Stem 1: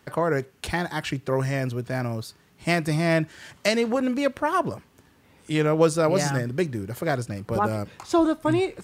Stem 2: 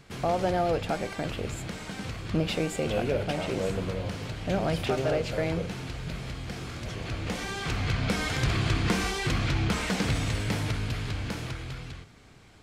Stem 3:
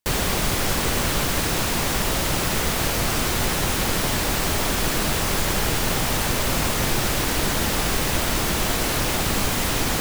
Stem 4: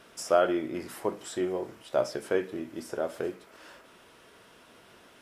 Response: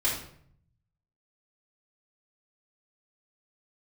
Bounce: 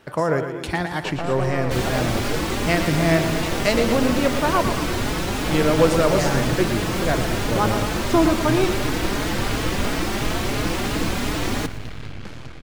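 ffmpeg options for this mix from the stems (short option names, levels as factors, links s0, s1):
-filter_complex "[0:a]highshelf=f=11000:g=6.5,volume=1.26,asplit=2[s0][s1];[s1]volume=0.376[s2];[1:a]aeval=exprs='max(val(0),0)':c=same,adelay=950,volume=1.12,asplit=2[s3][s4];[s4]volume=0.282[s5];[2:a]equalizer=f=300:w=1.9:g=6,asplit=2[s6][s7];[s7]adelay=4.3,afreqshift=2.9[s8];[s6][s8]amix=inputs=2:normalize=1,adelay=1650,volume=1.12,asplit=2[s9][s10];[s10]volume=0.133[s11];[3:a]acompressor=threshold=0.0398:ratio=6,volume=0.891[s12];[s2][s5][s11]amix=inputs=3:normalize=0,aecho=0:1:115|230|345|460|575|690|805|920:1|0.55|0.303|0.166|0.0915|0.0503|0.0277|0.0152[s13];[s0][s3][s9][s12][s13]amix=inputs=5:normalize=0,highshelf=f=7300:g=-11"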